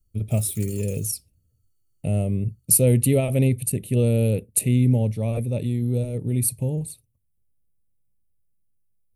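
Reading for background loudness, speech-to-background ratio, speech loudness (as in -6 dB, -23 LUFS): -41.0 LUFS, 18.5 dB, -22.5 LUFS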